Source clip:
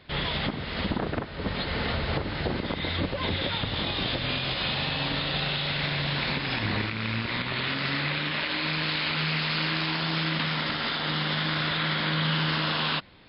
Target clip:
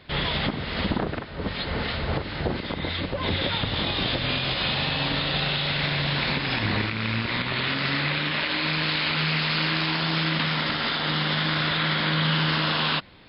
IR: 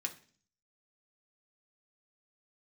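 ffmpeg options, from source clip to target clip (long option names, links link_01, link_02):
-filter_complex "[0:a]asettb=1/sr,asplit=3[link_01][link_02][link_03];[link_01]atrim=end=1.034[link_04];[link_02]atrim=start=1.03:end=3.26,asetpts=PTS-STARTPTS,afade=type=in:duration=0.004:curve=qsin,afade=type=out:start_time=2.226:duration=0.004:curve=qsin,acrossover=split=1500[link_05][link_06];[link_05]aeval=exprs='val(0)*(1-0.5/2+0.5/2*cos(2*PI*2.8*n/s))':channel_layout=same[link_07];[link_06]aeval=exprs='val(0)*(1-0.5/2-0.5/2*cos(2*PI*2.8*n/s))':channel_layout=same[link_08];[link_07][link_08]amix=inputs=2:normalize=0[link_09];[link_03]atrim=start=3.256[link_10];[link_04][link_09]acrossfade=duration=0.004:curve1=hsin:curve2=qsin[link_11];[link_11][link_10]acrossfade=duration=0.004:curve1=qsin:curve2=hsin,volume=3dB"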